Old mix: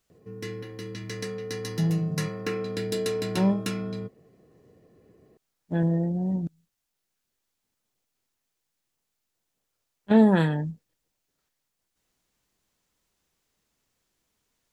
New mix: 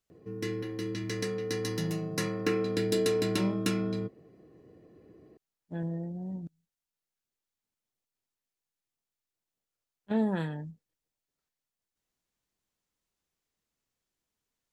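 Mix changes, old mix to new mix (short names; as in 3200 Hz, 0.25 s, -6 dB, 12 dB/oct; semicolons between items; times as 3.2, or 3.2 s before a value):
speech -10.5 dB; background: add bell 320 Hz +8.5 dB 0.29 oct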